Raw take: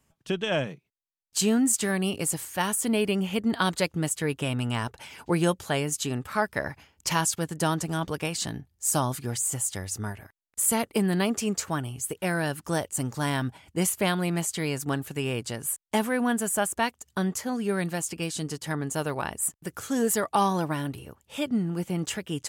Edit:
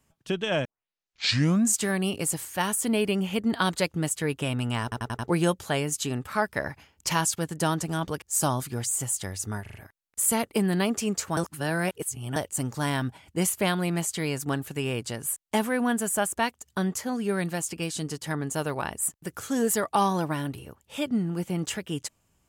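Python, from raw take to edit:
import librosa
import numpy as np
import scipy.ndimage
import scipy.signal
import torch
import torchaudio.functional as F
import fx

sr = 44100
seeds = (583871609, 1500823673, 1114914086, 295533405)

y = fx.edit(x, sr, fx.tape_start(start_s=0.65, length_s=1.13),
    fx.stutter_over(start_s=4.83, slice_s=0.09, count=5),
    fx.cut(start_s=8.22, length_s=0.52),
    fx.stutter(start_s=10.14, slice_s=0.04, count=4),
    fx.reverse_span(start_s=11.77, length_s=0.99), tone=tone)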